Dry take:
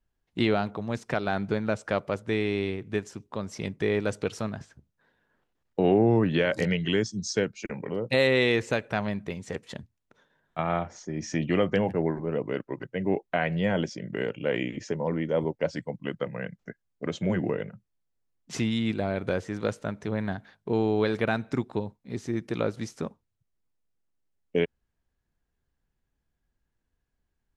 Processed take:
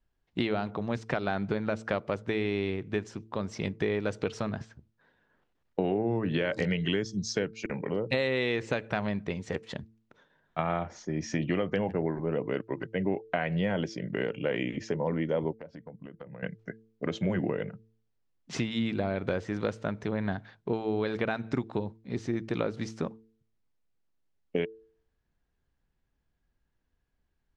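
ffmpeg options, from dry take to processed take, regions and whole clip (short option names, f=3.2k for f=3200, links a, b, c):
-filter_complex "[0:a]asettb=1/sr,asplit=3[a][b][c];[a]atrim=end=15.544[d];[b]atrim=start=15.54:end=16.43,asetpts=PTS-STARTPTS,afade=t=in:d=0.004:c=qsin,afade=t=out:st=0.886:d=0.004:c=qsin,lowpass=f=1.1k:p=1,acompressor=threshold=-41dB:ratio=16:attack=3.2:release=140:knee=1:detection=peak[e];[c]atrim=start=16.426[f];[d][e]acrossfade=d=0.004:c1=hsin:c2=qsin[g];[g][f]acrossfade=d=0.004:c1=qsin:c2=hsin,acompressor=threshold=-26dB:ratio=6,lowpass=5.3k,bandreject=f=111.1:t=h:w=4,bandreject=f=222.2:t=h:w=4,bandreject=f=333.3:t=h:w=4,bandreject=f=444.4:t=h:w=4,volume=1.5dB"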